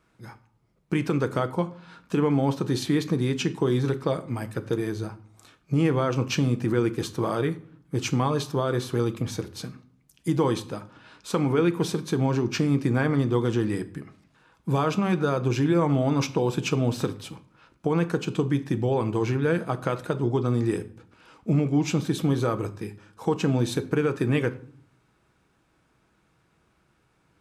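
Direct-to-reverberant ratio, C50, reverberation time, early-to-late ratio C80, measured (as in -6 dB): 9.5 dB, 17.0 dB, 0.55 s, 20.0 dB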